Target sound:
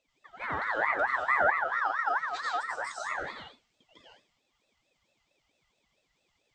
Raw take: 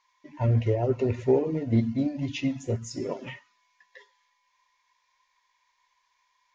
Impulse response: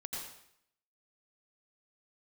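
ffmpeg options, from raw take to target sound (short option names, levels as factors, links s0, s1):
-filter_complex "[0:a]lowshelf=f=210:t=q:w=1.5:g=-8.5[s0];[1:a]atrim=start_sample=2205,afade=t=out:st=0.25:d=0.01,atrim=end_sample=11466[s1];[s0][s1]afir=irnorm=-1:irlink=0,aeval=exprs='val(0)*sin(2*PI*1300*n/s+1300*0.25/4.5*sin(2*PI*4.5*n/s))':c=same"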